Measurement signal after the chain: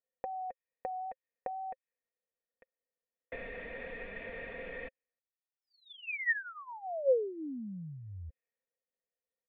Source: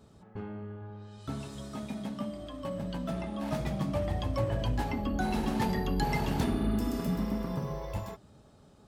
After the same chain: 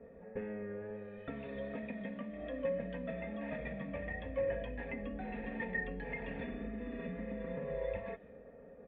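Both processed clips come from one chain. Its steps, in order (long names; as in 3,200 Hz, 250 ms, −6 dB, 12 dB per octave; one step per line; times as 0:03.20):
tape wow and flutter 26 cents
high-shelf EQ 2,200 Hz +9.5 dB
comb filter 4.3 ms, depth 65%
dynamic equaliser 490 Hz, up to −5 dB, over −42 dBFS, Q 0.95
downward compressor, threshold −37 dBFS
low-pass that shuts in the quiet parts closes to 1,100 Hz, open at −36 dBFS
formant resonators in series e
level +15.5 dB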